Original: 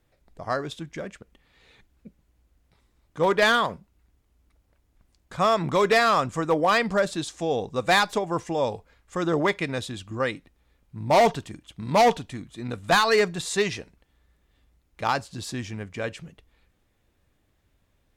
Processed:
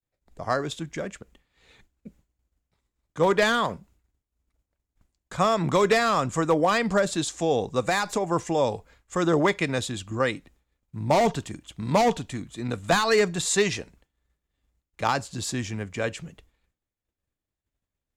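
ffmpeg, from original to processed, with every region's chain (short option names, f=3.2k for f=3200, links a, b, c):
-filter_complex "[0:a]asettb=1/sr,asplit=3[a][b][c];[a]atrim=end=7.854[d];[b]atrim=start=7.85:end=8.29,asetpts=PTS-STARTPTS,afade=t=in:d=0.004:c=qsin,afade=t=out:st=0.436:d=0.004:c=qsin,equalizer=f=3.3k:w=4.8:g=-7,acompressor=threshold=-22dB:ratio=6:attack=3.2:release=140:knee=1:detection=peak[e];[c]atrim=start=8.286[f];[d][e]acrossfade=d=0.004:c1=hsin:c2=qsin[g];[g][f]acrossfade=d=0.004:c1=qsin:c2=hsin,agate=range=-33dB:threshold=-53dB:ratio=3:detection=peak,equalizer=f=7.2k:w=3.4:g=6.5,acrossover=split=340[h][i];[i]acompressor=threshold=-21dB:ratio=6[j];[h][j]amix=inputs=2:normalize=0,volume=2.5dB"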